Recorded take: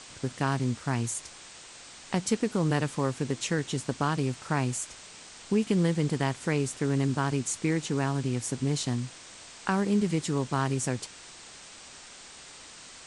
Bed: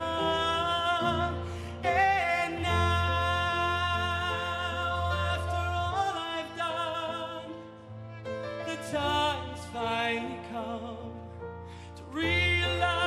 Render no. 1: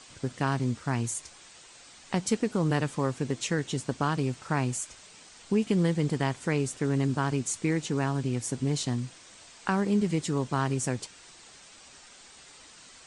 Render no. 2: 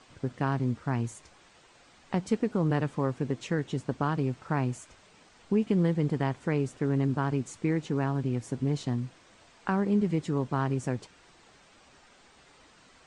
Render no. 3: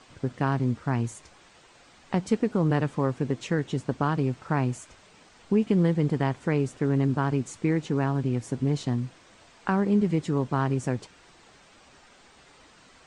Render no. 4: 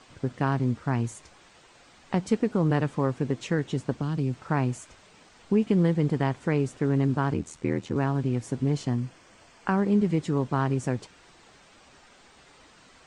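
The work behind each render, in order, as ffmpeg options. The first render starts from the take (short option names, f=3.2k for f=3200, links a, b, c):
-af "afftdn=nr=6:nf=-48"
-af "lowpass=f=1.5k:p=1"
-af "volume=3dB"
-filter_complex "[0:a]asettb=1/sr,asplit=3[a][b][c];[a]atrim=end=3.964[d];[b]atrim=start=3.96:end=4.41,asetpts=PTS-STARTPTS,afade=t=in:d=0.004:c=qsin,afade=t=out:st=0.446:d=0.004:c=qsin,acrossover=split=320|3000[e][f][g];[f]acompressor=threshold=-37dB:ratio=6:attack=3.2:release=140:knee=2.83:detection=peak[h];[e][h][g]amix=inputs=3:normalize=0[i];[c]atrim=start=4.406[j];[d][i]acrossfade=d=0.004:c1=hsin:c2=qsin[k];[k][j]acrossfade=d=0.004:c1=qsin:c2=hsin,asettb=1/sr,asplit=3[l][m][n];[l]atrim=end=7.334[o];[m]atrim=start=7.33:end=7.96,asetpts=PTS-STARTPTS,afade=t=in:d=0.004:c=qsin,afade=t=out:st=0.626:d=0.004:c=qsin,aeval=exprs='val(0)*sin(2*PI*40*n/s)':c=same[p];[n]atrim=start=7.956[q];[o][p]acrossfade=d=0.004:c1=hsin:c2=qsin[r];[r][q]acrossfade=d=0.004:c1=qsin:c2=hsin,asettb=1/sr,asplit=3[s][t][u];[s]atrim=end=8.774[v];[t]atrim=start=8.77:end=9.78,asetpts=PTS-STARTPTS,afade=t=in:d=0.004:c=qsin,afade=t=out:st=1.006:d=0.004:c=qsin,bandreject=f=3.8k:w=7[w];[u]atrim=start=9.776[x];[v][w]acrossfade=d=0.004:c1=hsin:c2=qsin[y];[y][x]acrossfade=d=0.004:c1=qsin:c2=hsin"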